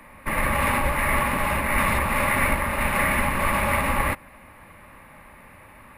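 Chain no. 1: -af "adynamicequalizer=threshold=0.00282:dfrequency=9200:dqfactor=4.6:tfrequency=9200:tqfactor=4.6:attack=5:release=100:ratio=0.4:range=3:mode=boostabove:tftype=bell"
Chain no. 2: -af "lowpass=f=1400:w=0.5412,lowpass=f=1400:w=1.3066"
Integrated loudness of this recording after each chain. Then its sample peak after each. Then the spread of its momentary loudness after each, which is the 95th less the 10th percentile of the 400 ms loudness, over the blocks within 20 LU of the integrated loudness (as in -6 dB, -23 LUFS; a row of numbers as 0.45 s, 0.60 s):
-22.5 LUFS, -26.0 LUFS; -8.5 dBFS, -11.5 dBFS; 4 LU, 3 LU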